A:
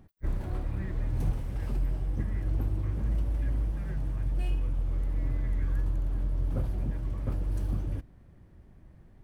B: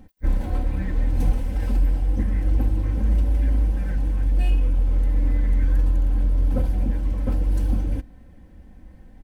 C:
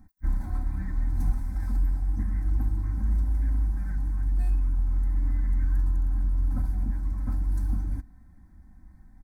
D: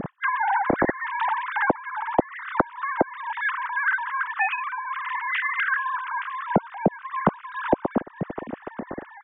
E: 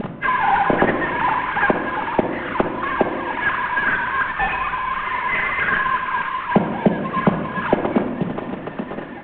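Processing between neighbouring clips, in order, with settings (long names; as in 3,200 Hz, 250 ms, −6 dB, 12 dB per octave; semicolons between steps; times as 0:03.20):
notch filter 1,200 Hz, Q 6; comb filter 3.9 ms, depth 73%; level +6.5 dB
phaser with its sweep stopped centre 1,200 Hz, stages 4; level −5 dB
three sine waves on the formant tracks; downward compressor 8 to 1, threshold −27 dBFS, peak gain reduction 20 dB; level +8.5 dB
variable-slope delta modulation 16 kbit/s; rectangular room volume 1,800 cubic metres, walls mixed, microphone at 1.3 metres; level +4.5 dB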